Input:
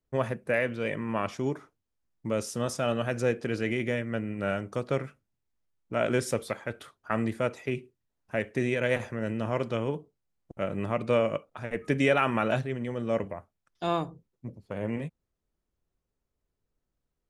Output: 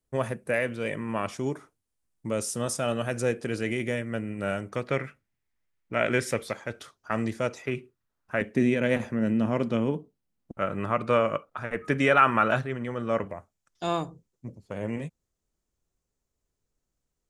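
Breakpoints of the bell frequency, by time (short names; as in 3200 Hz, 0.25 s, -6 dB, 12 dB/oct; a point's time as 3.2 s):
bell +9.5 dB 0.84 oct
9200 Hz
from 4.69 s 2000 Hz
from 6.48 s 5800 Hz
from 7.62 s 1300 Hz
from 8.41 s 230 Hz
from 10.55 s 1300 Hz
from 13.31 s 7000 Hz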